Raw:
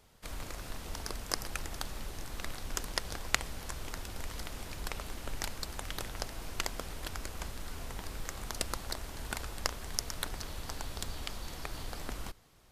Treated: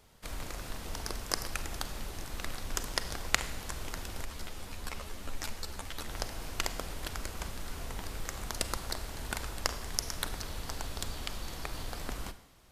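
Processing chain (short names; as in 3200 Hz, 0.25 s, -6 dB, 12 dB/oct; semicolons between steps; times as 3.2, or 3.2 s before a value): Schroeder reverb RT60 0.82 s, combs from 33 ms, DRR 12 dB; 4.25–6.09 ensemble effect; gain +1.5 dB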